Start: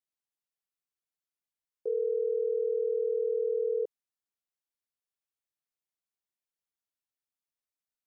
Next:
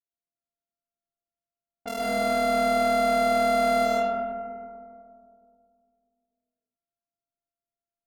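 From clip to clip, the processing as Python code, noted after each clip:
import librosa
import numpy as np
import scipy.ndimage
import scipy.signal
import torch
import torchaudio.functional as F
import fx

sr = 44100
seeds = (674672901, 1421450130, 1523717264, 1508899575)

y = np.r_[np.sort(x[:len(x) // 64 * 64].reshape(-1, 64), axis=1).ravel(), x[len(x) // 64 * 64:]]
y = fx.env_lowpass(y, sr, base_hz=430.0, full_db=-30.5)
y = fx.rev_freeverb(y, sr, rt60_s=2.4, hf_ratio=0.3, predelay_ms=80, drr_db=-6.0)
y = y * 10.0 ** (-3.0 / 20.0)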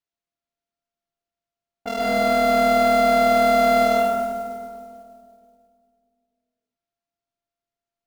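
y = scipy.signal.sosfilt(scipy.signal.butter(2, 5500.0, 'lowpass', fs=sr, output='sos'), x)
y = fx.mod_noise(y, sr, seeds[0], snr_db=23)
y = y * 10.0 ** (5.5 / 20.0)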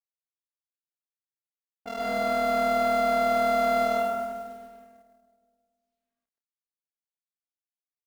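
y = fx.law_mismatch(x, sr, coded='A')
y = fx.dynamic_eq(y, sr, hz=1100.0, q=1.2, threshold_db=-34.0, ratio=4.0, max_db=5)
y = y * 10.0 ** (-8.5 / 20.0)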